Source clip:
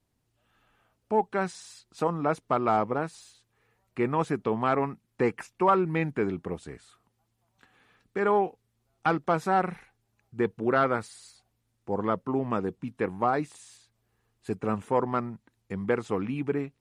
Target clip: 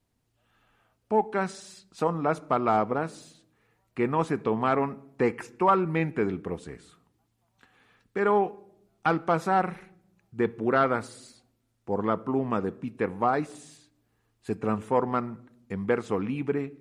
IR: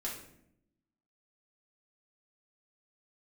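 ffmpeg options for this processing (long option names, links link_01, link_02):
-filter_complex "[0:a]asplit=2[link_01][link_02];[1:a]atrim=start_sample=2205,lowpass=8000[link_03];[link_02][link_03]afir=irnorm=-1:irlink=0,volume=-16dB[link_04];[link_01][link_04]amix=inputs=2:normalize=0"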